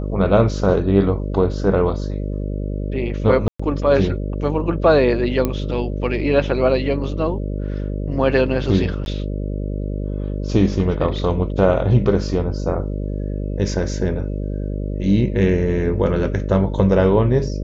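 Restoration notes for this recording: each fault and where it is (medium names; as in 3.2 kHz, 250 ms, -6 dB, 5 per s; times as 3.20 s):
buzz 50 Hz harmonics 12 -24 dBFS
3.48–3.60 s: dropout 115 ms
5.45 s: pop -7 dBFS
9.05–9.06 s: dropout 11 ms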